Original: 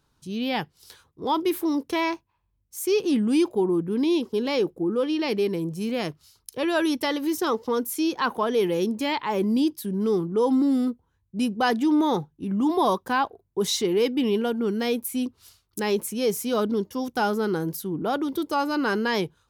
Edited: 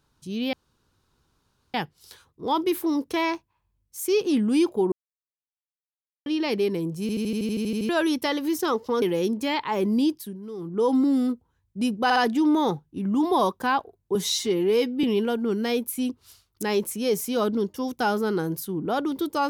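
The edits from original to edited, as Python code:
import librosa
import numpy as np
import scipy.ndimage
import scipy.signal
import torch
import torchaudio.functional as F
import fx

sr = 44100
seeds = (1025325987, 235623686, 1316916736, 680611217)

y = fx.edit(x, sr, fx.insert_room_tone(at_s=0.53, length_s=1.21),
    fx.silence(start_s=3.71, length_s=1.34),
    fx.stutter_over(start_s=5.8, slice_s=0.08, count=11),
    fx.cut(start_s=7.81, length_s=0.79),
    fx.fade_down_up(start_s=9.62, length_s=0.87, db=-13.5, fade_s=0.34, curve='qsin'),
    fx.stutter(start_s=11.62, slice_s=0.06, count=3),
    fx.stretch_span(start_s=13.61, length_s=0.59, factor=1.5), tone=tone)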